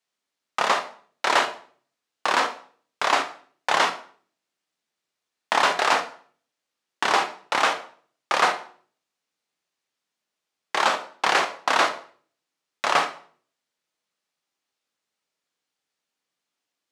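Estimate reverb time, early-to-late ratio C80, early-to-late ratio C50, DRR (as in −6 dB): 0.50 s, 16.0 dB, 12.0 dB, 7.0 dB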